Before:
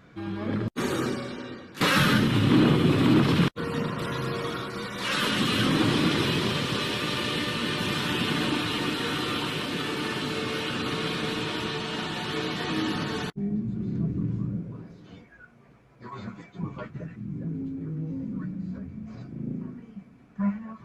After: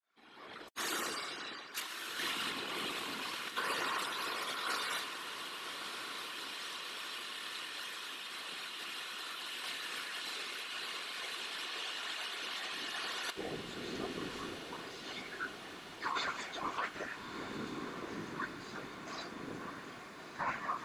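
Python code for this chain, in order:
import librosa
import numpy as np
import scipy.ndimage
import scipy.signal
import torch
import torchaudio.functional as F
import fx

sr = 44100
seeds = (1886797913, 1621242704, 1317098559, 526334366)

y = fx.fade_in_head(x, sr, length_s=4.55)
y = scipy.signal.sosfilt(scipy.signal.butter(2, 800.0, 'highpass', fs=sr, output='sos'), y)
y = fx.high_shelf(y, sr, hz=3800.0, db=7.5)
y = y + 0.69 * np.pad(y, (int(2.8 * sr / 1000.0), 0))[:len(y)]
y = fx.over_compress(y, sr, threshold_db=-40.0, ratio=-1.0)
y = fx.whisperise(y, sr, seeds[0])
y = fx.echo_diffused(y, sr, ms=1287, feedback_pct=66, wet_db=-9)
y = y * librosa.db_to_amplitude(-2.0)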